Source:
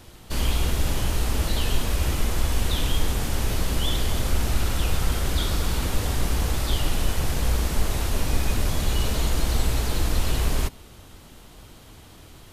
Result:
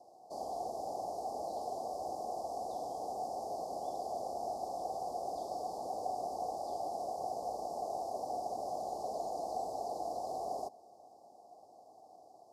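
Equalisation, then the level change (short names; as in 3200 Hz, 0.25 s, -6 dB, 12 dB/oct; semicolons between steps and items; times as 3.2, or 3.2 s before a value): vowel filter a; HPF 340 Hz 6 dB/oct; Chebyshev band-stop 870–4900 Hz, order 4; +8.0 dB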